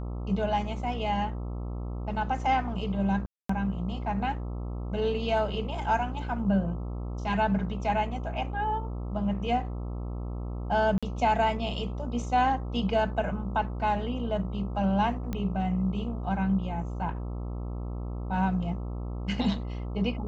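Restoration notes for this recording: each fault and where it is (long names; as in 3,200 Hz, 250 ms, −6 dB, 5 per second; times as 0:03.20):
mains buzz 60 Hz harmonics 22 −34 dBFS
0:03.26–0:03.49: drop-out 234 ms
0:10.98–0:11.03: drop-out 46 ms
0:15.33: click −19 dBFS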